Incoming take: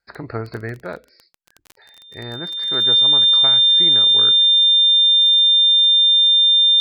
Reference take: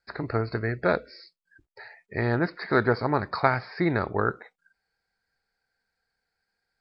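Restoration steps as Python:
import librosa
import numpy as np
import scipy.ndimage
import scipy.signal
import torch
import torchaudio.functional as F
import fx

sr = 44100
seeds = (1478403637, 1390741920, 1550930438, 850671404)

y = fx.fix_declick_ar(x, sr, threshold=6.5)
y = fx.notch(y, sr, hz=3600.0, q=30.0)
y = fx.fix_level(y, sr, at_s=0.82, step_db=7.0)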